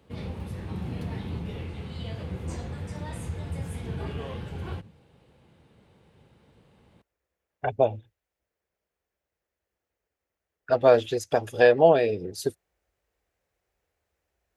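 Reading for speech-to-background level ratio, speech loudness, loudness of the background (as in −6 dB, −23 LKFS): 13.0 dB, −23.0 LKFS, −36.0 LKFS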